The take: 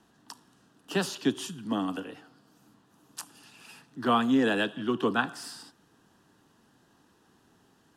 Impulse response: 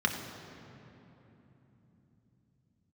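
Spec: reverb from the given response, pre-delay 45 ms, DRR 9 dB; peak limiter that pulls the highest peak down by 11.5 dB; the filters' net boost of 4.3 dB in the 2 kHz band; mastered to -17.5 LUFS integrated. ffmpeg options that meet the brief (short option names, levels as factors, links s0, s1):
-filter_complex "[0:a]equalizer=f=2000:t=o:g=6,alimiter=limit=0.1:level=0:latency=1,asplit=2[s0][s1];[1:a]atrim=start_sample=2205,adelay=45[s2];[s1][s2]afir=irnorm=-1:irlink=0,volume=0.112[s3];[s0][s3]amix=inputs=2:normalize=0,volume=5.01"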